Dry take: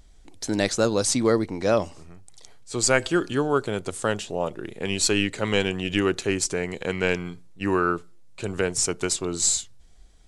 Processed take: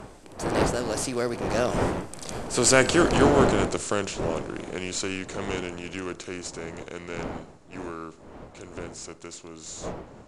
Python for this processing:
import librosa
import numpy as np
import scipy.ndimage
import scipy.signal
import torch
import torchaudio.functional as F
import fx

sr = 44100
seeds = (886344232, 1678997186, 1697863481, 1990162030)

y = fx.bin_compress(x, sr, power=0.6)
y = fx.dmg_wind(y, sr, seeds[0], corner_hz=610.0, level_db=-23.0)
y = fx.doppler_pass(y, sr, speed_mps=24, closest_m=15.0, pass_at_s=2.82)